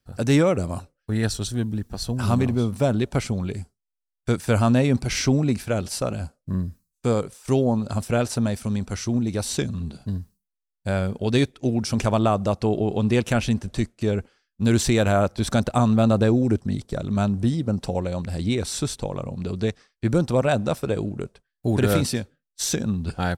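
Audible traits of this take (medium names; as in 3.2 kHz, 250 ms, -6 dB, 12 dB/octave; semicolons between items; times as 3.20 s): noise floor -83 dBFS; spectral tilt -6.0 dB/octave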